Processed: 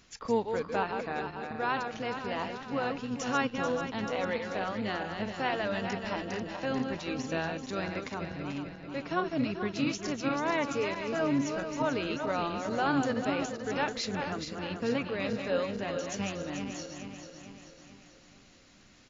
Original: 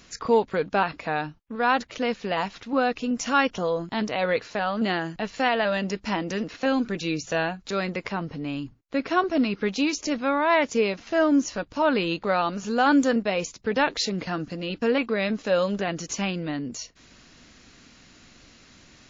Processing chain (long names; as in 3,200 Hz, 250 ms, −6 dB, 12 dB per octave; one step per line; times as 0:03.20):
feedback delay that plays each chunk backwards 219 ms, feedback 71%, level −6 dB
pitch-shifted copies added −12 semitones −11 dB
level −9 dB